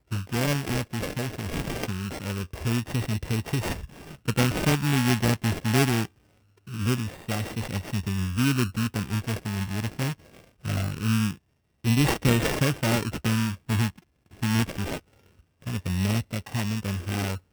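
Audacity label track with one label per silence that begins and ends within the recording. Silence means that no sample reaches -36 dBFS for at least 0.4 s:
6.050000	6.680000	silence
10.130000	10.650000	silence
11.340000	11.840000	silence
13.900000	14.420000	silence
14.980000	15.660000	silence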